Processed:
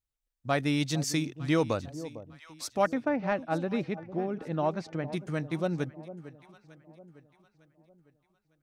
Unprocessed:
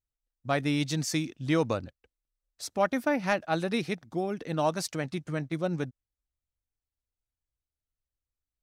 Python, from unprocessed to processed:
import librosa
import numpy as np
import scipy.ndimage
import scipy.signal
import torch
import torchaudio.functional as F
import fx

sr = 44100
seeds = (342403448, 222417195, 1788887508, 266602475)

y = fx.spacing_loss(x, sr, db_at_10k=29, at=(2.86, 5.13))
y = fx.echo_alternate(y, sr, ms=452, hz=880.0, feedback_pct=59, wet_db=-13.5)